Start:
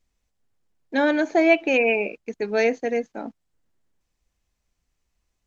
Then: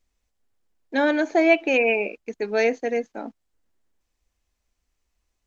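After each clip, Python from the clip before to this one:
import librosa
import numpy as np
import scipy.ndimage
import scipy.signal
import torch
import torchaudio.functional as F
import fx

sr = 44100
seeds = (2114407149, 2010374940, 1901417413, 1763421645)

y = fx.peak_eq(x, sr, hz=140.0, db=-14.5, octaves=0.47)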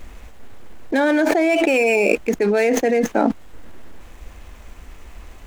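y = scipy.signal.medfilt(x, 9)
y = fx.env_flatten(y, sr, amount_pct=100)
y = y * 10.0 ** (-3.0 / 20.0)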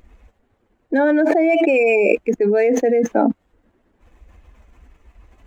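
y = fx.spec_expand(x, sr, power=1.5)
y = fx.highpass(y, sr, hz=120.0, slope=6)
y = y * 10.0 ** (2.0 / 20.0)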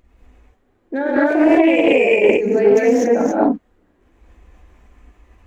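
y = fx.rev_gated(x, sr, seeds[0], gate_ms=270, shape='rising', drr_db=-7.0)
y = fx.doppler_dist(y, sr, depth_ms=0.15)
y = y * 10.0 ** (-6.0 / 20.0)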